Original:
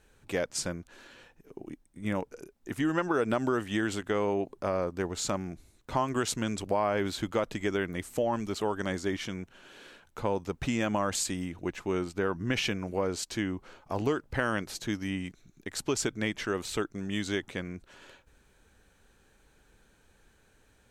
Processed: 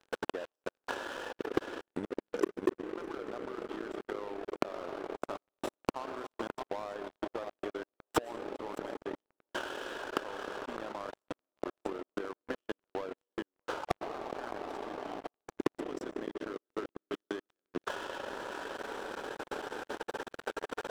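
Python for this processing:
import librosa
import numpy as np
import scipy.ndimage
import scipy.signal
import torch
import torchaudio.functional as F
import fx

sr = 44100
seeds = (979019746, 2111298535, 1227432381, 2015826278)

y = fx.gate_flip(x, sr, shuts_db=-30.0, range_db=-35)
y = scipy.signal.lfilter(np.full(20, 1.0 / 20), 1.0, y)
y = fx.low_shelf(y, sr, hz=470.0, db=-11.0)
y = fx.rev_freeverb(y, sr, rt60_s=4.8, hf_ratio=0.25, predelay_ms=75, drr_db=8.5)
y = fx.rider(y, sr, range_db=5, speed_s=0.5)
y = scipy.signal.sosfilt(scipy.signal.butter(4, 280.0, 'highpass', fs=sr, output='sos'), y)
y = fx.echo_feedback(y, sr, ms=612, feedback_pct=27, wet_db=-10.5)
y = fx.level_steps(y, sr, step_db=14)
y = fx.leveller(y, sr, passes=5)
y = fx.transient(y, sr, attack_db=9, sustain_db=-10)
y = y * librosa.db_to_amplitude(11.0)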